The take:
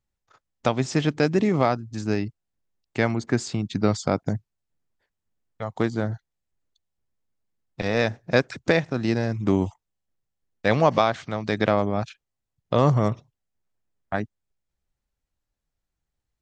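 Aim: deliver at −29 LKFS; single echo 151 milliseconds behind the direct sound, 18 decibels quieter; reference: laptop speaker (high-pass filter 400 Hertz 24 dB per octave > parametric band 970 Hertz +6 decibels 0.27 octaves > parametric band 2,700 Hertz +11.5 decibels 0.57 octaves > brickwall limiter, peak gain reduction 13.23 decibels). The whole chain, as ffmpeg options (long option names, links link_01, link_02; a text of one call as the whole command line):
ffmpeg -i in.wav -af "highpass=frequency=400:width=0.5412,highpass=frequency=400:width=1.3066,equalizer=frequency=970:width_type=o:width=0.27:gain=6,equalizer=frequency=2700:width_type=o:width=0.57:gain=11.5,aecho=1:1:151:0.126,volume=2dB,alimiter=limit=-15.5dB:level=0:latency=1" out.wav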